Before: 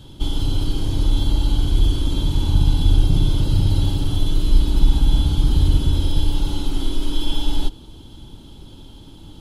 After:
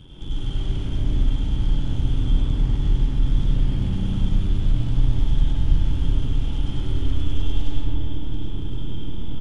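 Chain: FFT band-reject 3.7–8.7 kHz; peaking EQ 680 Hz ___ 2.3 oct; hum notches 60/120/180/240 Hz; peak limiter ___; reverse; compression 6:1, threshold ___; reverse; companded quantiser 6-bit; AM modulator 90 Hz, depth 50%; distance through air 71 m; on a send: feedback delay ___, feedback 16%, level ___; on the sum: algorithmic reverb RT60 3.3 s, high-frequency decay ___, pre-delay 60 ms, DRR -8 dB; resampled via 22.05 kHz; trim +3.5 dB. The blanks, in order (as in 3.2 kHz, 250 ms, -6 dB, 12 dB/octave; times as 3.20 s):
-7.5 dB, -13 dBFS, -28 dBFS, 101 ms, -6.5 dB, 0.25×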